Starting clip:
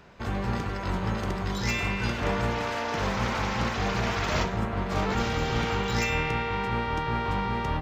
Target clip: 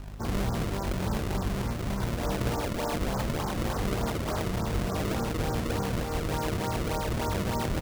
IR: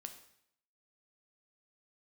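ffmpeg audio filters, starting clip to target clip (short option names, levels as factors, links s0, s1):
-filter_complex "[0:a]asplit=2[s0][s1];[s1]alimiter=limit=0.0668:level=0:latency=1:release=18,volume=0.944[s2];[s0][s2]amix=inputs=2:normalize=0,equalizer=f=320:w=6.2:g=3,volume=11.9,asoftclip=hard,volume=0.0841,aeval=exprs='val(0)+0.0158*(sin(2*PI*50*n/s)+sin(2*PI*2*50*n/s)/2+sin(2*PI*3*50*n/s)/3+sin(2*PI*4*50*n/s)/4+sin(2*PI*5*50*n/s)/5)':c=same,lowpass=f=1400:w=0.5412,lowpass=f=1400:w=1.3066,asplit=2[s3][s4];[s4]asetrate=29433,aresample=44100,atempo=1.49831,volume=0.562[s5];[s3][s5]amix=inputs=2:normalize=0,acrusher=samples=31:mix=1:aa=0.000001:lfo=1:lforange=49.6:lforate=3.4,volume=0.596"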